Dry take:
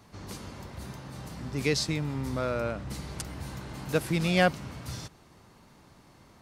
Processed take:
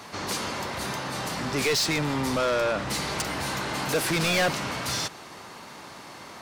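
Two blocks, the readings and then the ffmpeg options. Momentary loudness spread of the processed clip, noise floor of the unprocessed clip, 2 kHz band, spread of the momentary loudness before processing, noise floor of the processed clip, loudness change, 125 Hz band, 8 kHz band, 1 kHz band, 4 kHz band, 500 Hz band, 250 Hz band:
19 LU, -57 dBFS, +6.5 dB, 16 LU, -44 dBFS, +4.5 dB, -1.0 dB, +10.0 dB, +6.5 dB, +8.5 dB, +4.0 dB, +1.5 dB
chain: -filter_complex "[0:a]asplit=2[a][b];[b]highpass=f=720:p=1,volume=31dB,asoftclip=type=tanh:threshold=-9.5dB[c];[a][c]amix=inputs=2:normalize=0,lowpass=f=7.3k:p=1,volume=-6dB,volume=-6.5dB"

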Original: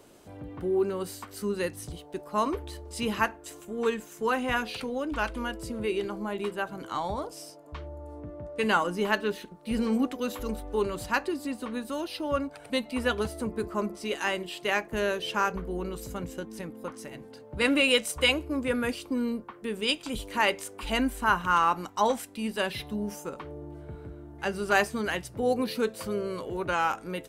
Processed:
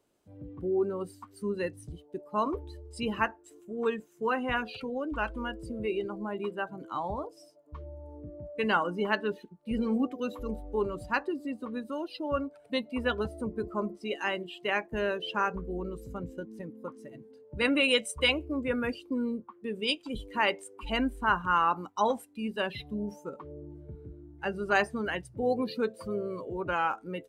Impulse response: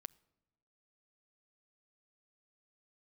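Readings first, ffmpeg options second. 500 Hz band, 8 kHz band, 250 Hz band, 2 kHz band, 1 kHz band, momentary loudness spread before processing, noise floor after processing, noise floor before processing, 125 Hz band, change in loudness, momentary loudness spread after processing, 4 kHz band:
-2.0 dB, -9.0 dB, -2.0 dB, -2.5 dB, -2.0 dB, 15 LU, -59 dBFS, -49 dBFS, -2.5 dB, -2.0 dB, 16 LU, -3.0 dB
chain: -af "afftdn=nr=17:nf=-36,volume=-2dB"

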